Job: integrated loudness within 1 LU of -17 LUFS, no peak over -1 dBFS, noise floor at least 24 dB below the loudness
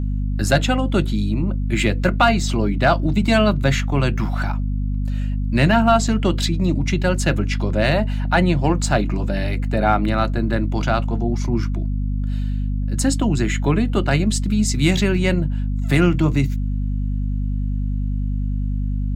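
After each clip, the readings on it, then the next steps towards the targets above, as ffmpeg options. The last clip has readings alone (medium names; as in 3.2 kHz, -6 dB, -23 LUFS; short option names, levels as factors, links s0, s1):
hum 50 Hz; highest harmonic 250 Hz; hum level -19 dBFS; loudness -20.0 LUFS; peak level -2.5 dBFS; loudness target -17.0 LUFS
-> -af "bandreject=f=50:t=h:w=4,bandreject=f=100:t=h:w=4,bandreject=f=150:t=h:w=4,bandreject=f=200:t=h:w=4,bandreject=f=250:t=h:w=4"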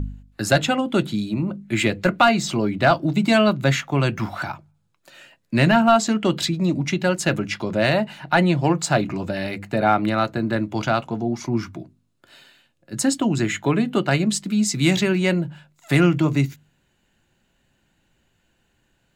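hum not found; loudness -21.0 LUFS; peak level -4.0 dBFS; loudness target -17.0 LUFS
-> -af "volume=1.58,alimiter=limit=0.891:level=0:latency=1"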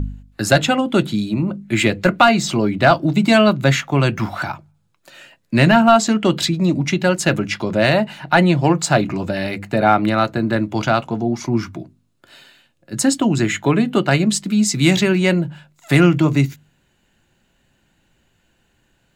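loudness -17.0 LUFS; peak level -1.0 dBFS; noise floor -63 dBFS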